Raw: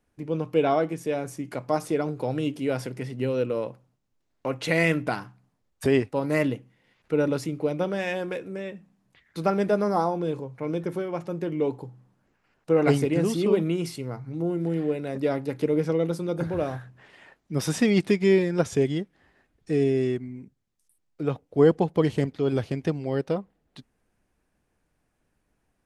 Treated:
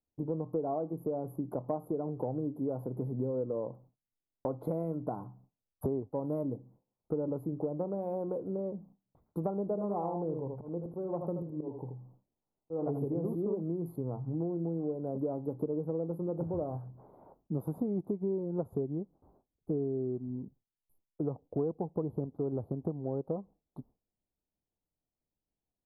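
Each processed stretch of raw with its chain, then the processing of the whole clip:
0:09.63–0:13.35: volume swells 429 ms + single-tap delay 79 ms −6 dB
whole clip: noise gate with hold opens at −52 dBFS; inverse Chebyshev band-stop filter 1,700–8,700 Hz, stop band 40 dB; downward compressor 6 to 1, threshold −33 dBFS; level +2 dB

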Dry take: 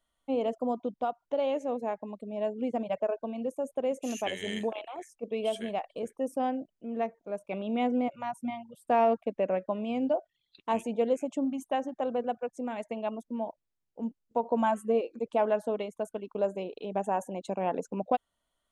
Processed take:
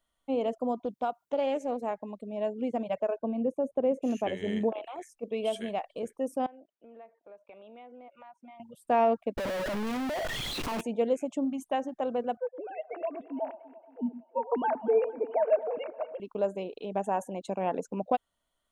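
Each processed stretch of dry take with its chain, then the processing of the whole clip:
0:00.85–0:01.91: high-pass filter 88 Hz + high-shelf EQ 6,500 Hz +7 dB + highs frequency-modulated by the lows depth 0.16 ms
0:03.18–0:04.83: high-pass filter 300 Hz 6 dB per octave + spectral tilt −4.5 dB per octave
0:06.46–0:08.60: high-pass filter 470 Hz + downward compressor 4 to 1, threshold −48 dBFS + high-frequency loss of the air 220 metres
0:09.37–0:10.81: sign of each sample alone + low-pass filter 1,100 Hz 6 dB per octave + power curve on the samples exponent 0.35
0:12.37–0:16.20: three sine waves on the formant tracks + notch filter 1,900 Hz, Q 21 + delay that swaps between a low-pass and a high-pass 114 ms, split 810 Hz, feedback 74%, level −13.5 dB
whole clip: no processing

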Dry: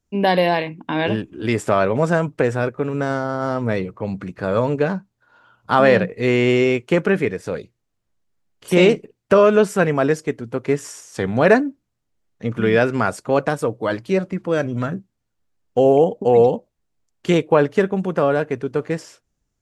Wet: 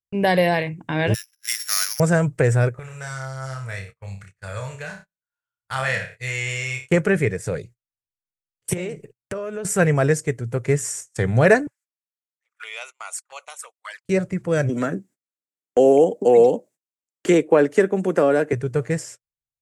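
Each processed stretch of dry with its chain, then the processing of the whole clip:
0:01.14–0:02.00: samples sorted by size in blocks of 8 samples + inverse Chebyshev high-pass filter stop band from 240 Hz, stop band 80 dB + downward expander −59 dBFS
0:02.79–0:06.90: guitar amp tone stack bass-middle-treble 10-0-10 + flutter between parallel walls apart 5.2 metres, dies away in 0.35 s
0:08.73–0:09.65: dynamic equaliser 5,200 Hz, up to −4 dB, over −35 dBFS, Q 1 + downward compressor 4 to 1, threshold −27 dBFS
0:11.67–0:14.05: flanger swept by the level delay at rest 10.1 ms, full sweep at −16 dBFS + high-pass filter 1,100 Hz 24 dB per octave
0:14.69–0:18.53: high-pass filter 220 Hz 24 dB per octave + parametric band 280 Hz +8 dB + multiband upward and downward compressor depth 40%
whole clip: parametric band 3,100 Hz −11 dB 2.4 octaves; noise gate −44 dBFS, range −32 dB; octave-band graphic EQ 125/250/1,000/2,000/8,000 Hz +8/−11/−6/+8/+12 dB; level +3 dB

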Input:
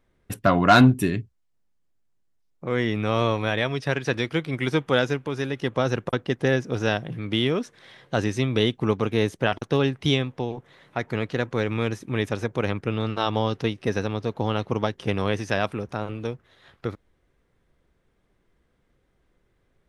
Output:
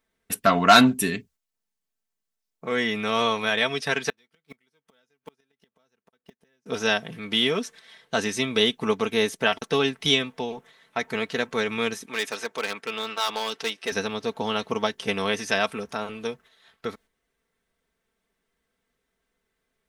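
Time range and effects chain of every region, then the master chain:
0:04.09–0:06.66: mu-law and A-law mismatch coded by mu + gate with flip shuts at −17 dBFS, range −39 dB
0:12.06–0:13.92: meter weighting curve A + hard clipping −21 dBFS
whole clip: noise gate −47 dBFS, range −7 dB; spectral tilt +2.5 dB per octave; comb filter 4.5 ms, depth 62%

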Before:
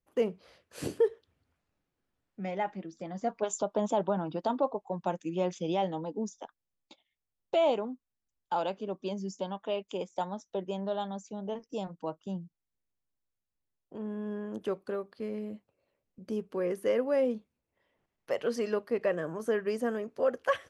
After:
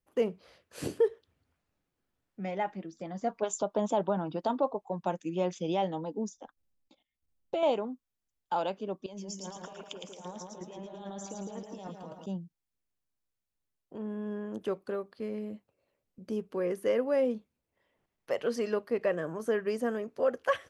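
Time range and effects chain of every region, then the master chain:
0:06.37–0:07.63: low-shelf EQ 430 Hz +11 dB + comb filter 3.8 ms, depth 31% + output level in coarse steps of 15 dB
0:09.06–0:12.26: low-shelf EQ 230 Hz −10 dB + compressor whose output falls as the input rises −45 dBFS + echo with a time of its own for lows and highs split 1,500 Hz, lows 157 ms, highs 111 ms, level −3.5 dB
whole clip: no processing

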